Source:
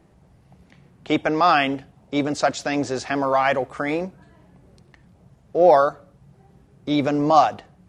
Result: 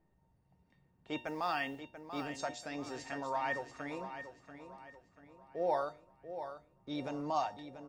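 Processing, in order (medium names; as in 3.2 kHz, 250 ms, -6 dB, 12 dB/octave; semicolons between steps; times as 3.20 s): 1.17–2.26 s: modulation noise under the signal 34 dB; feedback comb 910 Hz, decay 0.28 s, mix 90%; de-hum 120.2 Hz, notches 8; on a send: feedback delay 687 ms, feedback 43%, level -10 dB; on the sum: tape noise reduction on one side only decoder only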